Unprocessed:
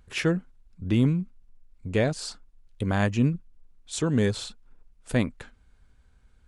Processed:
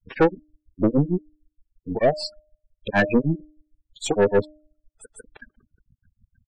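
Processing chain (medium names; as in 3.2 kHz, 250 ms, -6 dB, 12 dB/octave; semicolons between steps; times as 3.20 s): granulator 151 ms, grains 6.5 per s, pitch spread up and down by 0 st; half-wave rectifier; spectral gate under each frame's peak -20 dB strong; overdrive pedal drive 23 dB, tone 2.6 kHz, clips at -13 dBFS; de-hum 304.6 Hz, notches 2; trim +7.5 dB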